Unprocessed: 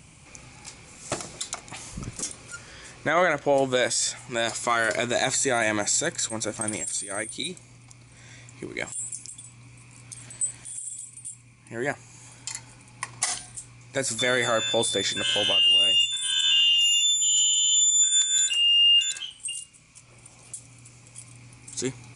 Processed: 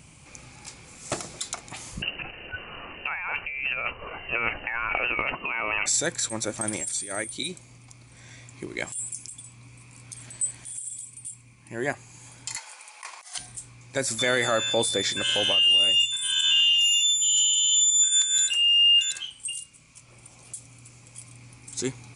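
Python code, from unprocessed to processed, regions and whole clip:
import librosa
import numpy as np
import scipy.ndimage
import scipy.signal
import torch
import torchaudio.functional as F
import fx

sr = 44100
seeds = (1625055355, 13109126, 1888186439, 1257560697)

y = fx.chain(x, sr, fx.freq_invert(carrier_hz=2900),
    fx.over_compress(threshold_db=-29.0, ratio=-1.0),
    fx.low_shelf(hz=220.0, db=11.5), at=(2.02, 5.86))
y = fx.chain(y, sr, fx.highpass(hz=630.0, slope=24),
    fx.over_compress(threshold_db=-36.0, ratio=-0.5), at=(12.56, 13.38))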